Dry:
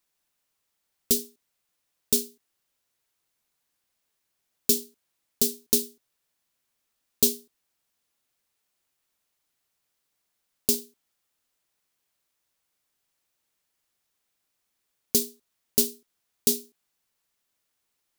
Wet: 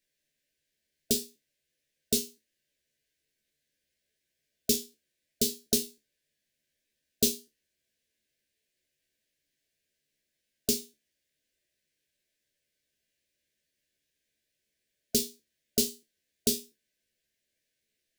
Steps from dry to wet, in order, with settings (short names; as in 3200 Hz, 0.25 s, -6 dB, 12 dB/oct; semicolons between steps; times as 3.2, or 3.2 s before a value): brick-wall FIR band-stop 670–1500 Hz; high shelf 7700 Hz -9 dB; resonator 73 Hz, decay 0.22 s, harmonics all, mix 90%; gain +7 dB